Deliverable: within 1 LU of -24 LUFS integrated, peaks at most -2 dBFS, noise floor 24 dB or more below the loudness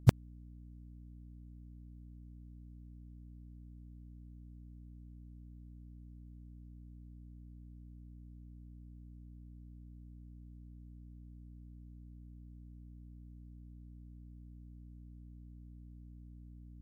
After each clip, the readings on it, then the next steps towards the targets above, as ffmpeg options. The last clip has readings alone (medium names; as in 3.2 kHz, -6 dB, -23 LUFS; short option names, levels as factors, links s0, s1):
hum 60 Hz; highest harmonic 300 Hz; hum level -50 dBFS; loudness -50.5 LUFS; peak level -8.5 dBFS; loudness target -24.0 LUFS
-> -af "bandreject=f=60:t=h:w=6,bandreject=f=120:t=h:w=6,bandreject=f=180:t=h:w=6,bandreject=f=240:t=h:w=6,bandreject=f=300:t=h:w=6"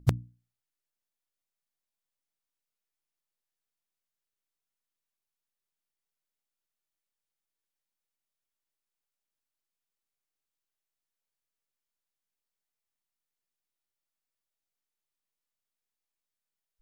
hum not found; loudness -33.5 LUFS; peak level -10.0 dBFS; loudness target -24.0 LUFS
-> -af "volume=2.99,alimiter=limit=0.794:level=0:latency=1"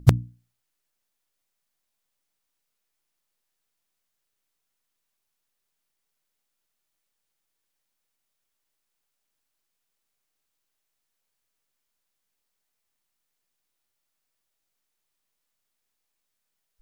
loudness -24.5 LUFS; peak level -2.0 dBFS; noise floor -80 dBFS